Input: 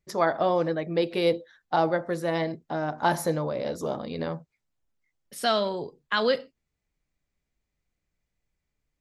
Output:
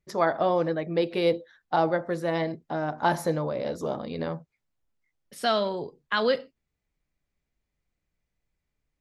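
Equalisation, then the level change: treble shelf 6.4 kHz -7 dB; 0.0 dB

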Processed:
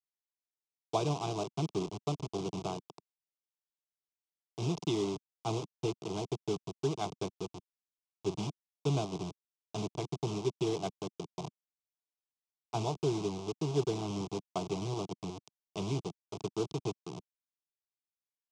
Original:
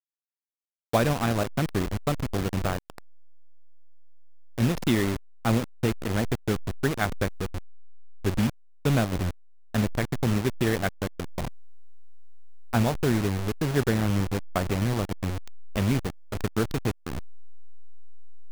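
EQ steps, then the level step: cabinet simulation 190–6200 Hz, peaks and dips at 230 Hz -8 dB, 330 Hz -3 dB, 800 Hz -4 dB, 1.4 kHz -7 dB, 4.3 kHz -6 dB; peaking EQ 1.6 kHz -8.5 dB 1.1 oct; static phaser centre 360 Hz, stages 8; 0.0 dB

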